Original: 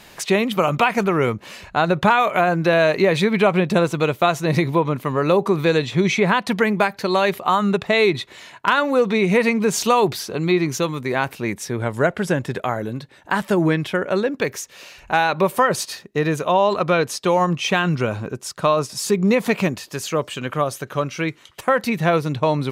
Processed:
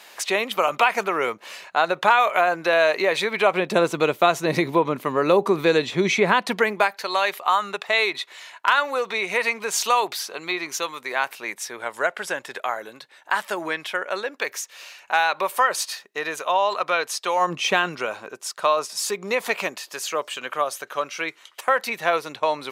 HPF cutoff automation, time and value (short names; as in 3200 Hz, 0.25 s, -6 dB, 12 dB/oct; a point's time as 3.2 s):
3.4 s 550 Hz
3.89 s 260 Hz
6.38 s 260 Hz
7.07 s 770 Hz
17.35 s 770 Hz
17.59 s 260 Hz
18.06 s 630 Hz